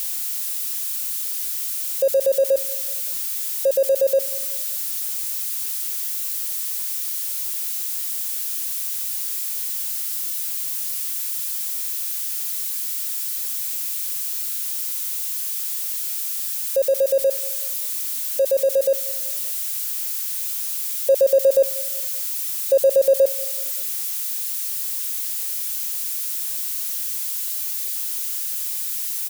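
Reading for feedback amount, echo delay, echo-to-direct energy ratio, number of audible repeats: 46%, 0.19 s, -20.0 dB, 3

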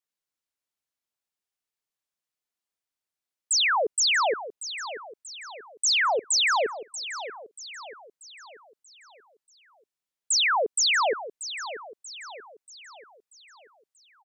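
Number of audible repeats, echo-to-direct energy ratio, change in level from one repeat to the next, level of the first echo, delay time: 4, -11.5 dB, -6.5 dB, -12.5 dB, 0.635 s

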